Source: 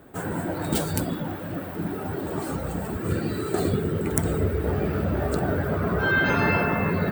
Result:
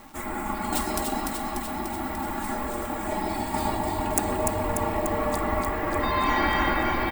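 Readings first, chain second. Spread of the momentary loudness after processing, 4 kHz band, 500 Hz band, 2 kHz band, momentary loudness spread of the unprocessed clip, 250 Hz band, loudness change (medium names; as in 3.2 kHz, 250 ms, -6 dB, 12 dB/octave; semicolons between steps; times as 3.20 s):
8 LU, +2.5 dB, -2.5 dB, -3.5 dB, 9 LU, -3.0 dB, -1.0 dB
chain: ring modulator 530 Hz; comb 3.6 ms, depth 87%; echo whose repeats swap between lows and highs 147 ms, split 2.3 kHz, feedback 82%, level -2.5 dB; reverse; upward compressor, threshold -25 dBFS; reverse; peaking EQ 450 Hz -4.5 dB 2.8 oct; crackle 580 per s -44 dBFS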